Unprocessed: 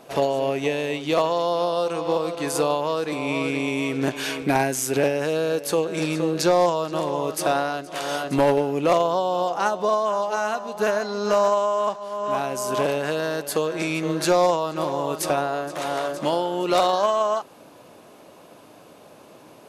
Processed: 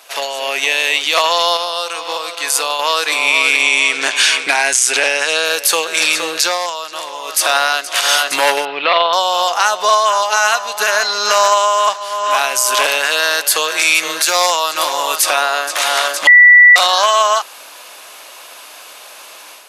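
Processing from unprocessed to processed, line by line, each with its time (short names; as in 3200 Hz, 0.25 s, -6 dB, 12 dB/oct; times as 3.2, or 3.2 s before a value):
1.57–2.79 gain -5.5 dB
3.62–5.45 steep low-pass 10000 Hz
6.37–7.45 dip -9 dB, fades 0.22 s
8.65–9.13 elliptic low-pass 4100 Hz, stop band 50 dB
13.68–15.17 high shelf 8400 Hz +8 dB
16.27–16.76 bleep 1960 Hz -19 dBFS
whole clip: Bessel high-pass 2000 Hz, order 2; AGC gain up to 7.5 dB; maximiser +15 dB; gain -1 dB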